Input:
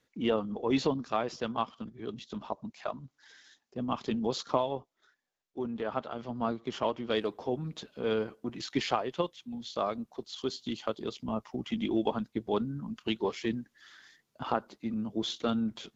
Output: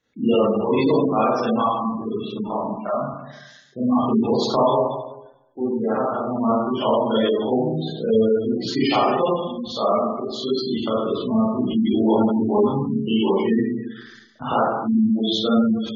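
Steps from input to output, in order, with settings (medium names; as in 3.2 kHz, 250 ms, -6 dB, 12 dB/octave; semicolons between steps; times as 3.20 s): Schroeder reverb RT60 1.1 s, combs from 28 ms, DRR -9.5 dB; waveshaping leveller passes 1; spectral gate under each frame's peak -20 dB strong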